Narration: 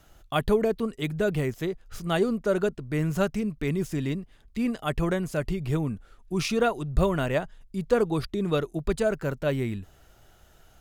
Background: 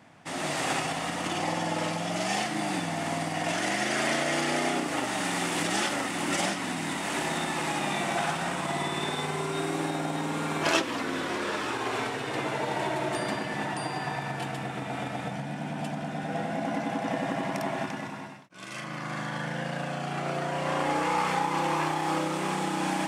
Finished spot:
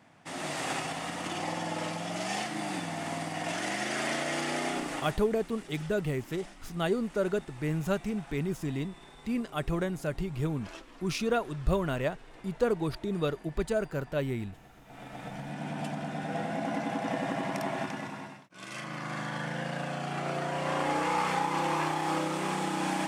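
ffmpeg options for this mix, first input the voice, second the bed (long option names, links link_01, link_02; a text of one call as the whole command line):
ffmpeg -i stem1.wav -i stem2.wav -filter_complex "[0:a]adelay=4700,volume=-4.5dB[link_01];[1:a]volume=15.5dB,afade=type=out:start_time=4.9:duration=0.32:silence=0.133352,afade=type=in:start_time=14.84:duration=0.85:silence=0.1[link_02];[link_01][link_02]amix=inputs=2:normalize=0" out.wav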